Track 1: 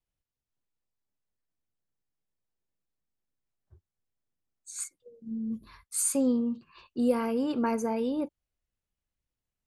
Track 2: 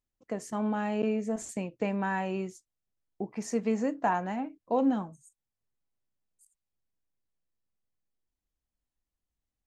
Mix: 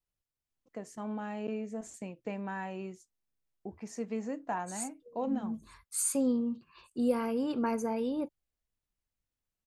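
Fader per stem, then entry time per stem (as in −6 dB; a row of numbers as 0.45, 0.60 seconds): −3.0, −7.5 decibels; 0.00, 0.45 seconds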